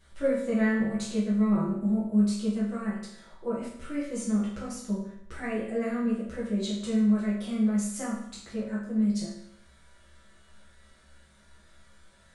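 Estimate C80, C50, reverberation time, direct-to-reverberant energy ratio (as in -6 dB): 6.0 dB, 2.5 dB, 0.70 s, -9.0 dB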